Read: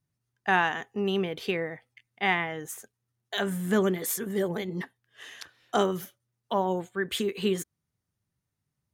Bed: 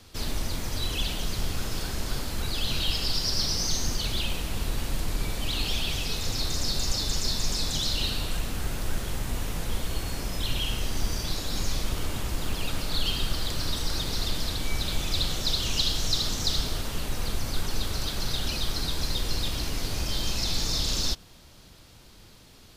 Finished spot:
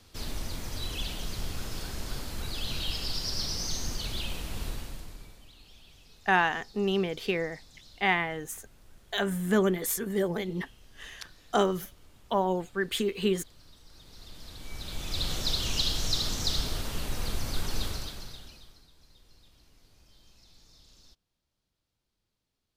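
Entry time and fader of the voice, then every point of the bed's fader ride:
5.80 s, 0.0 dB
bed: 4.68 s -5.5 dB
5.55 s -26.5 dB
13.85 s -26.5 dB
15.32 s -2.5 dB
17.86 s -2.5 dB
18.89 s -31 dB

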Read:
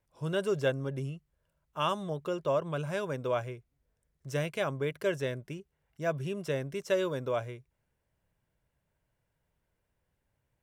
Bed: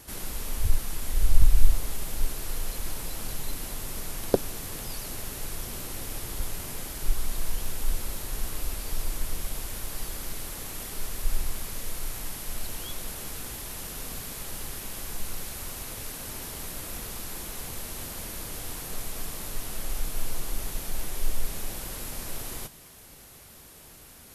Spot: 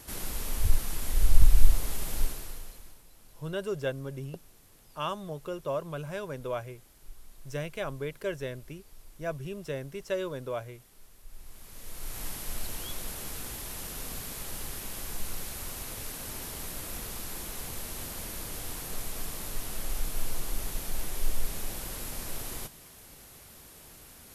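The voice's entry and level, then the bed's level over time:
3.20 s, -3.0 dB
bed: 2.21 s -0.5 dB
3.04 s -22 dB
11.27 s -22 dB
12.23 s -1.5 dB

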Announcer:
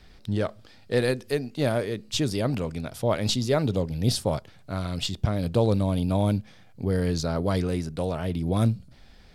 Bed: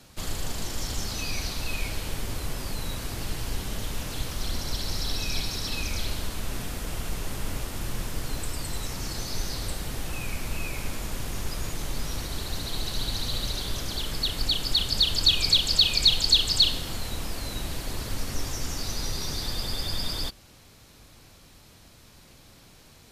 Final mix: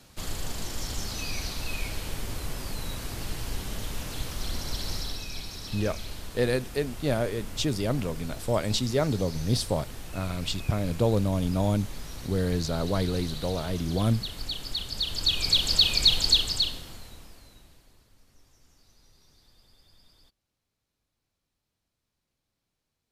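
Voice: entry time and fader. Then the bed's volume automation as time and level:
5.45 s, -2.0 dB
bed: 4.94 s -2 dB
5.27 s -8 dB
14.94 s -8 dB
15.66 s -0.5 dB
16.30 s -0.5 dB
18.11 s -30 dB

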